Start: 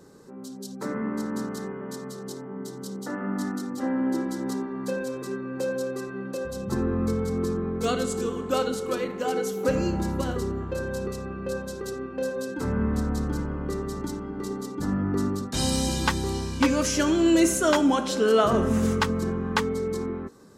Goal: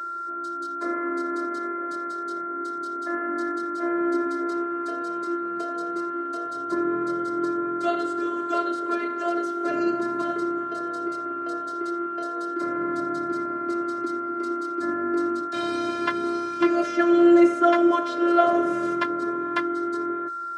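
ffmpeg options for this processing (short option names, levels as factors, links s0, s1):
-filter_complex "[0:a]acrossover=split=210|650|3100[s0][s1][s2][s3];[s3]acompressor=threshold=0.00282:ratio=8[s4];[s0][s1][s2][s4]amix=inputs=4:normalize=0,aeval=exprs='val(0)+0.02*sin(2*PI*1300*n/s)':c=same,acontrast=83,afftfilt=real='hypot(re,im)*cos(PI*b)':imag='0':win_size=512:overlap=0.75,highpass=f=140:w=0.5412,highpass=f=140:w=1.3066,equalizer=f=590:t=q:w=4:g=10,equalizer=f=830:t=q:w=4:g=-8,equalizer=f=1500:t=q:w=4:g=6,equalizer=f=2700:t=q:w=4:g=-4,equalizer=f=7100:t=q:w=4:g=-5,lowpass=f=9300:w=0.5412,lowpass=f=9300:w=1.3066,volume=0.794"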